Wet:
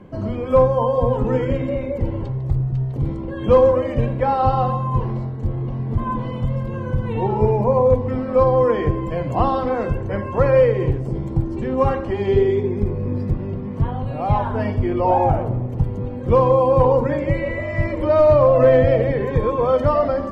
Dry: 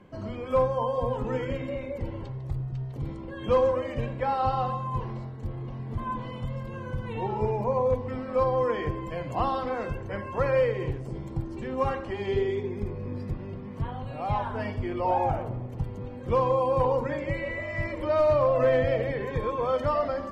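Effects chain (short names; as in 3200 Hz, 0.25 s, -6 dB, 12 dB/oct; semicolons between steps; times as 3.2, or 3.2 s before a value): tilt shelf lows +4.5 dB; gain +7 dB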